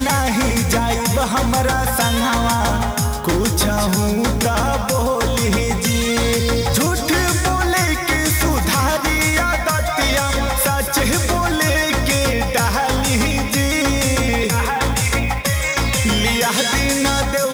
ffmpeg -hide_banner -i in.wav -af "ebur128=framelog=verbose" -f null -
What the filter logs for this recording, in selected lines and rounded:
Integrated loudness:
  I:         -17.1 LUFS
  Threshold: -27.1 LUFS
Loudness range:
  LRA:         0.9 LU
  Threshold: -37.1 LUFS
  LRA low:   -17.5 LUFS
  LRA high:  -16.6 LUFS